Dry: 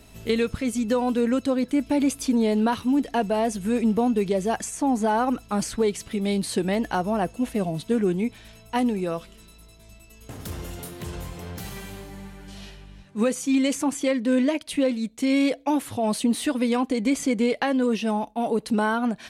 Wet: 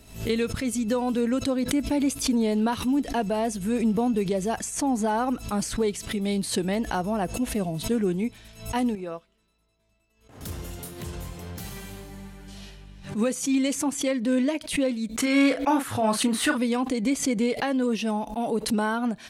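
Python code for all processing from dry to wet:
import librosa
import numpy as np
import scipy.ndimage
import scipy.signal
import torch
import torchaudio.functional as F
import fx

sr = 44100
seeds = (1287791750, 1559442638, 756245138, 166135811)

y = fx.chain(x, sr, fx.lowpass(hz=1900.0, slope=6),
    fx.low_shelf(hz=290.0, db=-10.5),
    fx.upward_expand(threshold_db=-52.0, expansion=1.5), at=(8.95, 10.41))
y = fx.chain(y, sr, fx.peak_eq(hz=1400.0, db=13.5, octaves=1.1),
    fx.doubler(ms=36.0, db=-7.0), at=(15.17, 16.58))
y = fx.bass_treble(y, sr, bass_db=2, treble_db=3)
y = fx.pre_swell(y, sr, db_per_s=120.0)
y = F.gain(torch.from_numpy(y), -3.0).numpy()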